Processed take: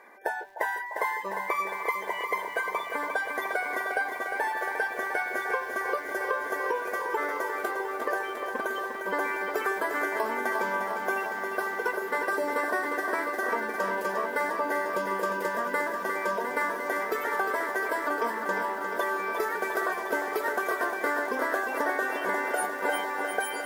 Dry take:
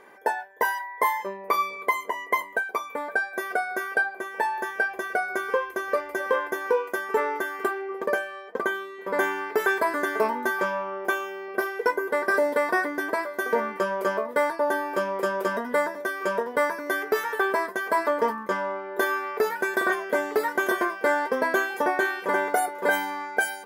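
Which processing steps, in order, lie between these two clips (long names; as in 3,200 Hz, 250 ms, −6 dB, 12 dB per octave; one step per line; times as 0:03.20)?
spectral magnitudes quantised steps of 30 dB
on a send: echo through a band-pass that steps 150 ms, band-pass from 320 Hz, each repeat 1.4 octaves, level −10 dB
on the sum: downward compressor, threshold −24 dBFS, peak gain reduction 6.5 dB
low-shelf EQ 340 Hz −7.5 dB
feedback echo at a low word length 353 ms, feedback 80%, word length 9 bits, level −7 dB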